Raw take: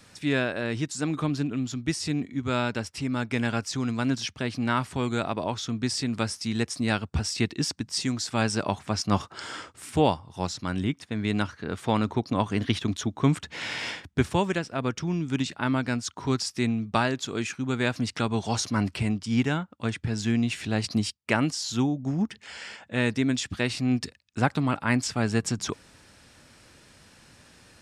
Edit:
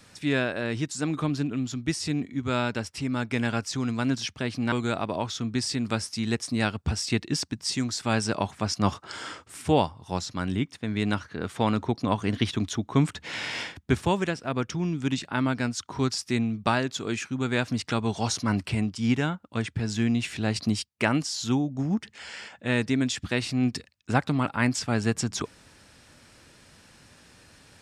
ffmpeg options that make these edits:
-filter_complex "[0:a]asplit=2[s0][s1];[s0]atrim=end=4.722[s2];[s1]atrim=start=4.998[s3];[s2][s3]acrossfade=d=0.004:c1=hsin:c2=hsin"

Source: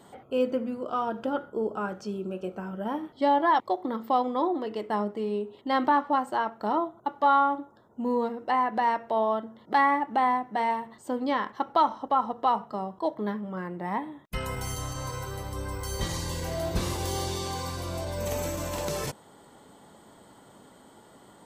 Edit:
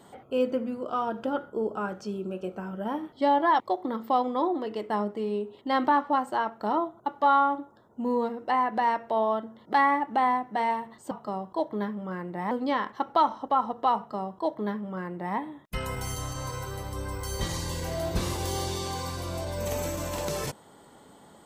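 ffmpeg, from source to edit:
-filter_complex "[0:a]asplit=3[s0][s1][s2];[s0]atrim=end=11.112[s3];[s1]atrim=start=12.568:end=13.972[s4];[s2]atrim=start=11.108[s5];[s3][s4]acrossfade=d=0.004:c1=hsin:c2=hsin[s6];[s6][s5]acrossfade=d=0.004:c1=hsin:c2=hsin"

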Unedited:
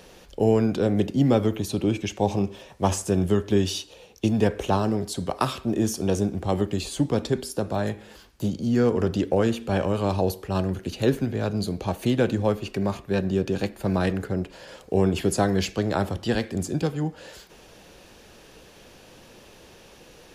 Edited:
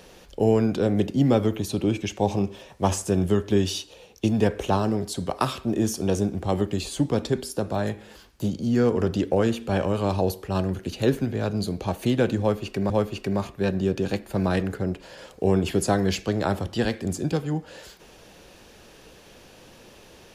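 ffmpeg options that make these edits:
-filter_complex "[0:a]asplit=2[s0][s1];[s0]atrim=end=12.902[s2];[s1]atrim=start=12.398[s3];[s2][s3]acrossfade=d=0.004:c1=hsin:c2=hsin"

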